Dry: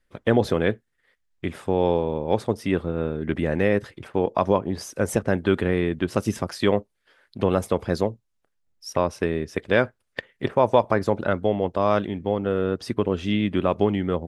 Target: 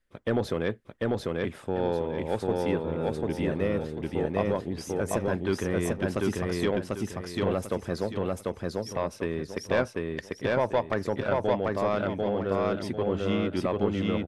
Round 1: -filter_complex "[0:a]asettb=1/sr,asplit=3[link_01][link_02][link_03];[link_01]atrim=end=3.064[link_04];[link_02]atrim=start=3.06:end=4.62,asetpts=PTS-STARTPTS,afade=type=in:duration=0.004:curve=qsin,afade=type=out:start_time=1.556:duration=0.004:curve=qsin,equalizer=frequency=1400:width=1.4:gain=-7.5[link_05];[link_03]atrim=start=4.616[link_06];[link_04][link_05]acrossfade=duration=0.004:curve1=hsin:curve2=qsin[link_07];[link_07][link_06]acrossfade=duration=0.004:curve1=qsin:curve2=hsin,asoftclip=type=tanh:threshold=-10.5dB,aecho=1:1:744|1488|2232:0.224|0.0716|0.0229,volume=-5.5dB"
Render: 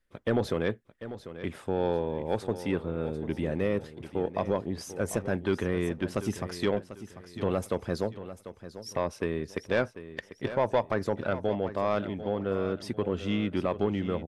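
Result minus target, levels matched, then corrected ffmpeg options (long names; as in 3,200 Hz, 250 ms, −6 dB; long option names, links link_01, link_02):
echo-to-direct −11.5 dB
-filter_complex "[0:a]asettb=1/sr,asplit=3[link_01][link_02][link_03];[link_01]atrim=end=3.064[link_04];[link_02]atrim=start=3.06:end=4.62,asetpts=PTS-STARTPTS,afade=type=in:duration=0.004:curve=qsin,afade=type=out:start_time=1.556:duration=0.004:curve=qsin,equalizer=frequency=1400:width=1.4:gain=-7.5[link_05];[link_03]atrim=start=4.616[link_06];[link_04][link_05]acrossfade=duration=0.004:curve1=hsin:curve2=qsin[link_07];[link_07][link_06]acrossfade=duration=0.004:curve1=qsin:curve2=hsin,asoftclip=type=tanh:threshold=-10.5dB,aecho=1:1:744|1488|2232|2976:0.841|0.269|0.0862|0.0276,volume=-5.5dB"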